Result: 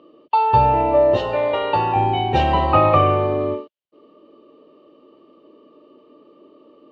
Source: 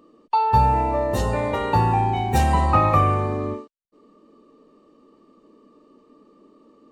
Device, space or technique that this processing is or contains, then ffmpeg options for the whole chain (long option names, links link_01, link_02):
guitar cabinet: -filter_complex "[0:a]highpass=92,equalizer=frequency=210:width_type=q:width=4:gain=-8,equalizer=frequency=350:width_type=q:width=4:gain=5,equalizer=frequency=590:width_type=q:width=4:gain=8,equalizer=frequency=1800:width_type=q:width=4:gain=-3,equalizer=frequency=3000:width_type=q:width=4:gain=9,lowpass=frequency=4100:width=0.5412,lowpass=frequency=4100:width=1.3066,asettb=1/sr,asplit=3[link_01][link_02][link_03];[link_01]atrim=end=1.174[link_04];[link_02]atrim=start=1.17:end=1.96,asetpts=PTS-STARTPTS,afade=type=in:duration=0.004:curve=qsin,afade=type=out:start_time=0.786:duration=0.004:curve=qsin,lowshelf=frequency=360:gain=-10[link_05];[link_03]atrim=start=1.956[link_06];[link_04][link_05]acrossfade=duration=0.004:curve1=hsin:curve2=qsin[link_07];[link_07][link_06]acrossfade=duration=0.004:curve1=qsin:curve2=hsin,volume=2dB"